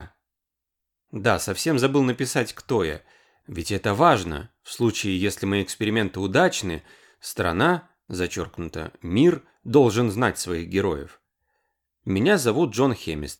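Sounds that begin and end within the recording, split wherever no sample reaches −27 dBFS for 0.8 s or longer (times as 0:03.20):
0:01.15–0:11.03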